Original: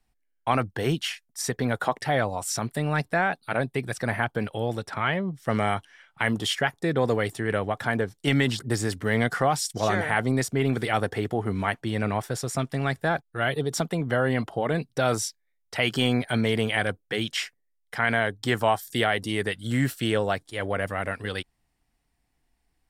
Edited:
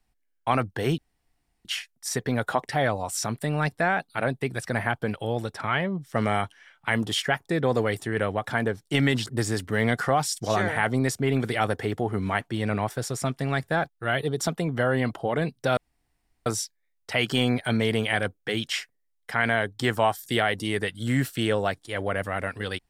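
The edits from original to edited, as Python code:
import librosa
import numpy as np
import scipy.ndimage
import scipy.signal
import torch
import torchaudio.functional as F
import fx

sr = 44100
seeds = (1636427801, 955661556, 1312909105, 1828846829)

y = fx.edit(x, sr, fx.insert_room_tone(at_s=0.98, length_s=0.67),
    fx.insert_room_tone(at_s=15.1, length_s=0.69), tone=tone)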